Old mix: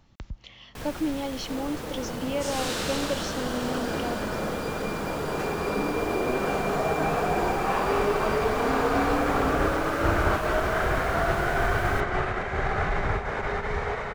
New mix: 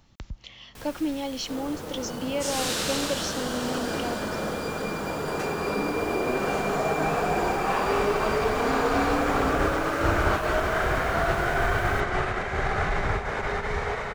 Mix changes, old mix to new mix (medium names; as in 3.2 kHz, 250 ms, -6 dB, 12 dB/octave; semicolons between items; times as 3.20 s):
first sound -7.0 dB; master: add treble shelf 3.7 kHz +6.5 dB